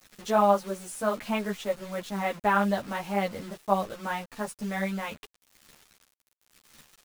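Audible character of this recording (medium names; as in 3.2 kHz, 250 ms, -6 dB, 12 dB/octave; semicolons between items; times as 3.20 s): tremolo triangle 0.92 Hz, depth 35%; a quantiser's noise floor 8-bit, dither none; a shimmering, thickened sound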